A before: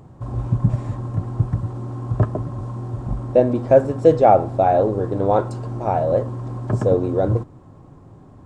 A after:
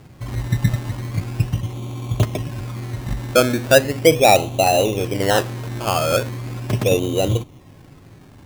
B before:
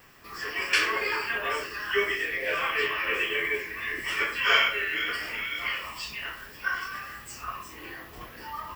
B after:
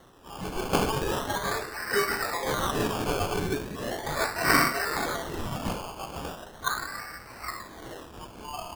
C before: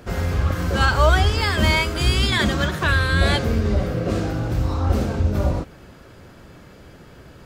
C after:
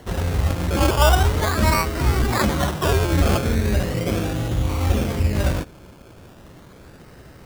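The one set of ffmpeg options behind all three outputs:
-filter_complex "[0:a]acrossover=split=5100[s0][s1];[s1]acompressor=threshold=0.00501:ratio=4:attack=1:release=60[s2];[s0][s2]amix=inputs=2:normalize=0,acrusher=samples=18:mix=1:aa=0.000001:lfo=1:lforange=10.8:lforate=0.38"

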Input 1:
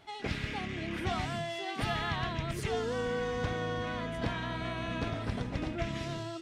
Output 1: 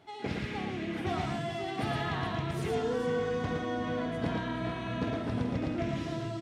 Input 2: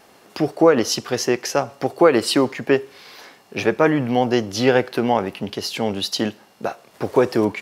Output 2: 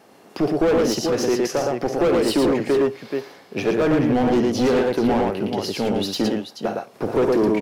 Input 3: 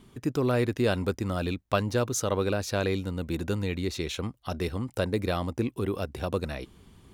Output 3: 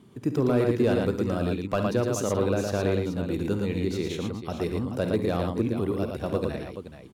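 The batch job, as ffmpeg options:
-filter_complex "[0:a]highpass=85,lowshelf=f=140:g=-6.5,asplit=2[s0][s1];[s1]aecho=0:1:52|69|113|430:0.224|0.224|0.631|0.299[s2];[s0][s2]amix=inputs=2:normalize=0,volume=7.08,asoftclip=hard,volume=0.141,tiltshelf=f=720:g=5"

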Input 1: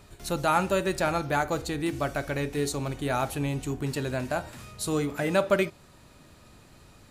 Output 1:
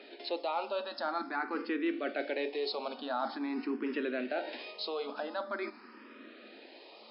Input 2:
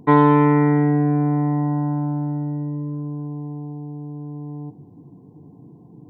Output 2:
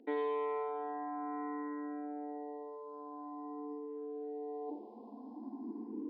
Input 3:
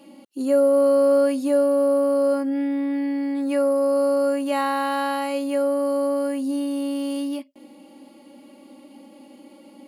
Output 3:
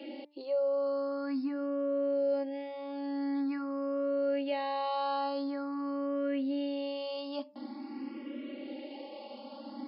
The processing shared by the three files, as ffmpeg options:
-filter_complex "[0:a]areverse,acompressor=threshold=0.0282:ratio=6,areverse,afftfilt=real='re*between(b*sr/4096,210,5300)':imag='im*between(b*sr/4096,210,5300)':win_size=4096:overlap=0.75,bandreject=f=294.1:t=h:w=4,bandreject=f=588.2:t=h:w=4,bandreject=f=882.3:t=h:w=4,bandreject=f=1176.4:t=h:w=4,bandreject=f=1470.5:t=h:w=4,bandreject=f=1764.6:t=h:w=4,bandreject=f=2058.7:t=h:w=4,bandreject=f=2352.8:t=h:w=4,bandreject=f=2646.9:t=h:w=4,acrossover=split=340[s0][s1];[s0]acompressor=threshold=0.00891:ratio=2.5[s2];[s2][s1]amix=inputs=2:normalize=0,asplit=2[s3][s4];[s4]alimiter=level_in=2.99:limit=0.0631:level=0:latency=1:release=140,volume=0.335,volume=1.33[s5];[s3][s5]amix=inputs=2:normalize=0,asplit=2[s6][s7];[s7]afreqshift=0.46[s8];[s6][s8]amix=inputs=2:normalize=1"

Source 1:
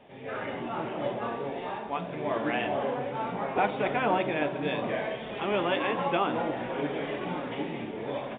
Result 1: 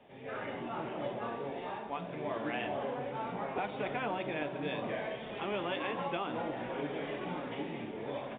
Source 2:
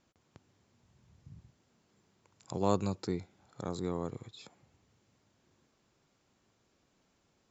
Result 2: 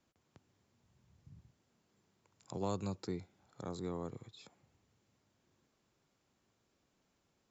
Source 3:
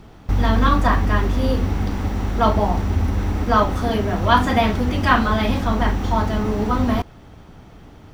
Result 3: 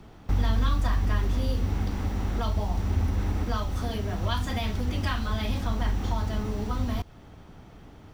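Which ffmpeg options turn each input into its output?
-filter_complex "[0:a]acrossover=split=130|3000[s0][s1][s2];[s1]acompressor=threshold=0.0447:ratio=6[s3];[s0][s3][s2]amix=inputs=3:normalize=0,volume=0.562"

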